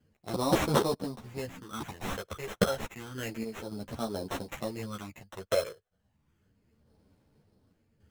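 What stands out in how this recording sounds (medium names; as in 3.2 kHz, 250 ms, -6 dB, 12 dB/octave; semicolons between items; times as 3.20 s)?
random-step tremolo 3.5 Hz; phasing stages 8, 0.31 Hz, lowest notch 250–3000 Hz; aliases and images of a low sample rate 4.7 kHz, jitter 0%; a shimmering, thickened sound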